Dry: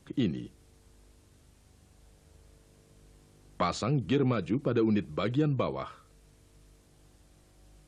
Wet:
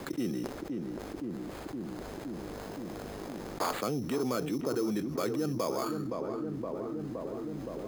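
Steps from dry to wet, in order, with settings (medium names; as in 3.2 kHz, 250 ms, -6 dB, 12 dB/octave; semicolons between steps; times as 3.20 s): 0.43–3.79 s: cycle switcher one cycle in 3, inverted; three-band isolator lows -16 dB, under 230 Hz, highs -23 dB, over 2.5 kHz; sample-rate reducer 5.7 kHz, jitter 0%; filtered feedback delay 518 ms, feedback 65%, low-pass 1.2 kHz, level -12 dB; level flattener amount 70%; trim -4.5 dB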